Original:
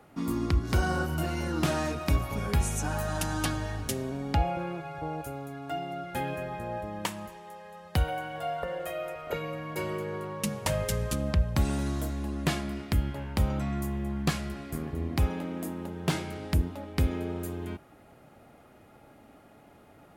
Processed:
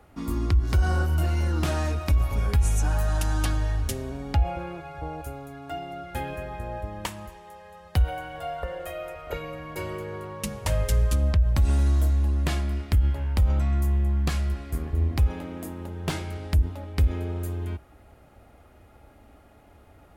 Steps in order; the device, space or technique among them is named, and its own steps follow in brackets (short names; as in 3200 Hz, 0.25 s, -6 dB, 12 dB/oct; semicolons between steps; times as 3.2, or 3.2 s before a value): car stereo with a boomy subwoofer (resonant low shelf 100 Hz +11.5 dB, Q 1.5; limiter -13.5 dBFS, peak gain reduction 11 dB)